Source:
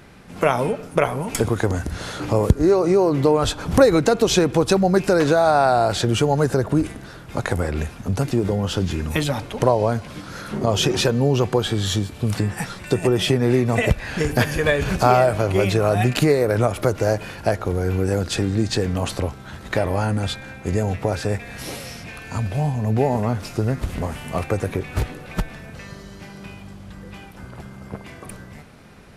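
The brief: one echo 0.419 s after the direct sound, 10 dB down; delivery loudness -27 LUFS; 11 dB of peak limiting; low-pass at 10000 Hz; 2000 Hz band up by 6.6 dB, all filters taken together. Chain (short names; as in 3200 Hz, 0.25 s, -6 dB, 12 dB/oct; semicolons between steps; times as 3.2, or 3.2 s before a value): LPF 10000 Hz; bell 2000 Hz +8.5 dB; limiter -10 dBFS; echo 0.419 s -10 dB; gain -5 dB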